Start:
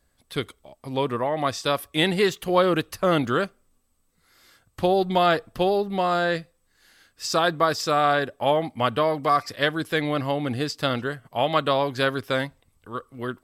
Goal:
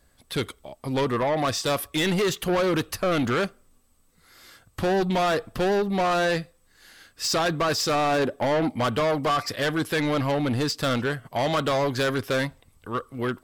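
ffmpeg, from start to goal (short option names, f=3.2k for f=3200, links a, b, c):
-filter_complex "[0:a]asettb=1/sr,asplit=3[a][b][c];[a]atrim=end=7.954[d];[b]atrim=start=7.95:end=8.77,asetpts=PTS-STARTPTS,afade=t=in:d=0.004:c=qsin,afade=t=out:st=0.816:d=0.004:c=qsin,equalizer=f=300:w=0.74:g=7[e];[c]atrim=start=8.766[f];[d][e]acrossfade=d=0.004:c1=hsin:c2=qsin[g];[g][f]acrossfade=d=0.004:c1=qsin:c2=hsin,alimiter=limit=-13dB:level=0:latency=1:release=25,asoftclip=type=tanh:threshold=-25.5dB,volume=6dB"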